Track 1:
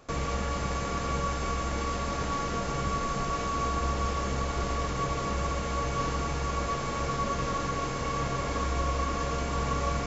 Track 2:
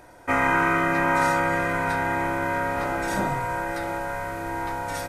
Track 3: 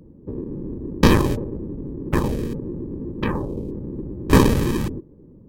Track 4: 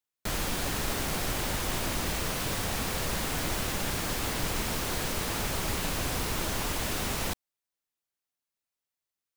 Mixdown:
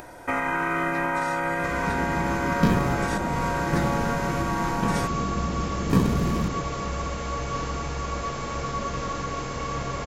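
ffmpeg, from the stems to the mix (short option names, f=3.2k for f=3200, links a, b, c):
-filter_complex "[0:a]adelay=1550,volume=0.5dB[a];[1:a]bandreject=f=50:t=h:w=6,bandreject=f=100:t=h:w=6,acrossover=split=9800[b][c];[c]acompressor=threshold=-53dB:ratio=4:attack=1:release=60[d];[b][d]amix=inputs=2:normalize=0,volume=1.5dB[e];[2:a]adelay=1600,volume=-3dB,equalizer=f=170:w=1.5:g=12,acompressor=threshold=-35dB:ratio=1.5,volume=0dB[f];[a][e]amix=inputs=2:normalize=0,alimiter=limit=-16.5dB:level=0:latency=1:release=290,volume=0dB[g];[f][g]amix=inputs=2:normalize=0,acompressor=mode=upward:threshold=-37dB:ratio=2.5"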